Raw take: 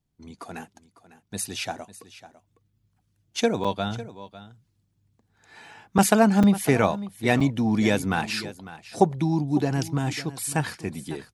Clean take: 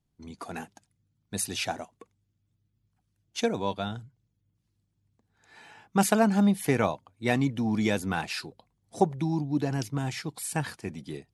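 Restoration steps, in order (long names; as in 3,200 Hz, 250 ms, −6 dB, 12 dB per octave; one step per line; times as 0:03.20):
repair the gap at 0:03.64/0:05.98/0:06.43/0:07.40, 5.6 ms
echo removal 551 ms −16 dB
level correction −4.5 dB, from 0:02.28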